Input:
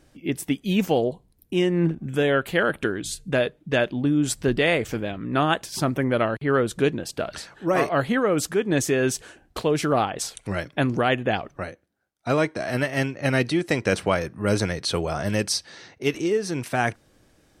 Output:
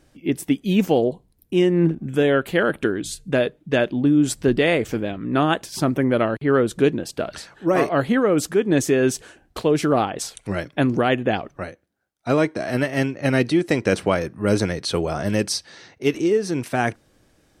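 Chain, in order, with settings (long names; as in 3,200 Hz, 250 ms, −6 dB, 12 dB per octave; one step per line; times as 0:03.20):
dynamic equaliser 300 Hz, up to +5 dB, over −34 dBFS, Q 0.79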